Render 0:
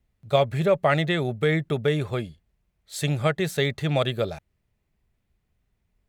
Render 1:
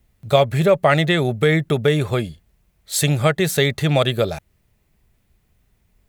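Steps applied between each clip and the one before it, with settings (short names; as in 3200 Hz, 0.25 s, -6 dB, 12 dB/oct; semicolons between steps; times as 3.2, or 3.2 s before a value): in parallel at +1 dB: compressor, threshold -31 dBFS, peak gain reduction 15 dB; on the sum: high shelf 7700 Hz +8 dB; gain +3.5 dB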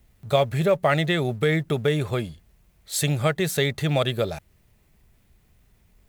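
G.711 law mismatch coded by mu; gain -5.5 dB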